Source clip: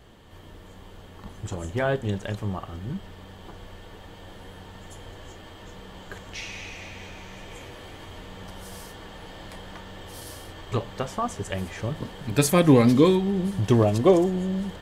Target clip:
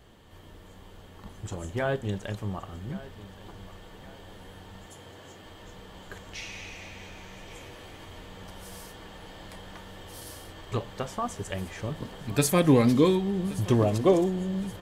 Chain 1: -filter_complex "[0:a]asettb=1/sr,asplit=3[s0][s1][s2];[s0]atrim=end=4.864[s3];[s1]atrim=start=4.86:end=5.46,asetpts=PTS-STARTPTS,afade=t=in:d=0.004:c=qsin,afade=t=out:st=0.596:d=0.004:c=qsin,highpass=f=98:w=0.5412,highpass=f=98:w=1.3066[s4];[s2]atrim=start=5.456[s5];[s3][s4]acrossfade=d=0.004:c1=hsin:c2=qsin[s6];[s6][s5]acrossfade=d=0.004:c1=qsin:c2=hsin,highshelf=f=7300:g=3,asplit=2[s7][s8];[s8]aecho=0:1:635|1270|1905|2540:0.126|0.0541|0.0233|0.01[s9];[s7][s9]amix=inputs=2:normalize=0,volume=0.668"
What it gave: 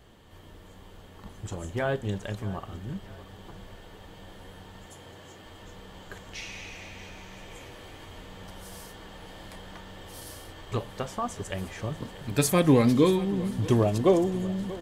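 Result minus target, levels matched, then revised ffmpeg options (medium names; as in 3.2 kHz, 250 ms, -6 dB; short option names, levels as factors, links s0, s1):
echo 488 ms early
-filter_complex "[0:a]asettb=1/sr,asplit=3[s0][s1][s2];[s0]atrim=end=4.864[s3];[s1]atrim=start=4.86:end=5.46,asetpts=PTS-STARTPTS,afade=t=in:d=0.004:c=qsin,afade=t=out:st=0.596:d=0.004:c=qsin,highpass=f=98:w=0.5412,highpass=f=98:w=1.3066[s4];[s2]atrim=start=5.456[s5];[s3][s4]acrossfade=d=0.004:c1=hsin:c2=qsin[s6];[s6][s5]acrossfade=d=0.004:c1=qsin:c2=hsin,highshelf=f=7300:g=3,asplit=2[s7][s8];[s8]aecho=0:1:1123|2246|3369|4492:0.126|0.0541|0.0233|0.01[s9];[s7][s9]amix=inputs=2:normalize=0,volume=0.668"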